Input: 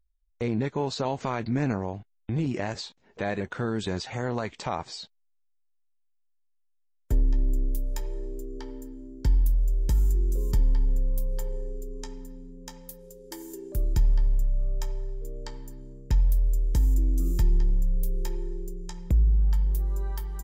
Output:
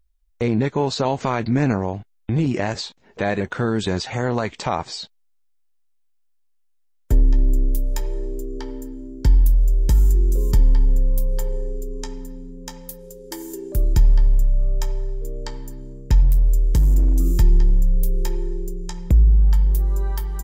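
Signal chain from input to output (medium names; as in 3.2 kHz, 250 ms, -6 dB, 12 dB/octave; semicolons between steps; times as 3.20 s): 16.22–17.34 s: overload inside the chain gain 18.5 dB; trim +7.5 dB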